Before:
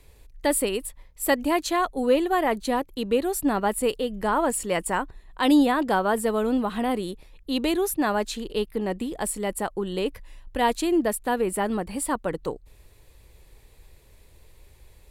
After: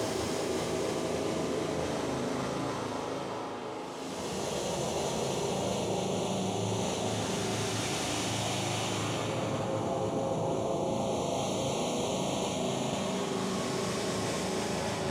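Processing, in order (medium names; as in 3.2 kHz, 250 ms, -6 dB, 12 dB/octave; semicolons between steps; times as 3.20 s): noise-vocoded speech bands 2; spring tank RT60 1.5 s, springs 37 ms, chirp 30 ms, DRR 1 dB; touch-sensitive flanger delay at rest 8.4 ms, full sweep at -17.5 dBFS; Paulstretch 6.1×, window 0.50 s, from 0.45 s; reverse; compression, threshold -29 dBFS, peak gain reduction 13.5 dB; reverse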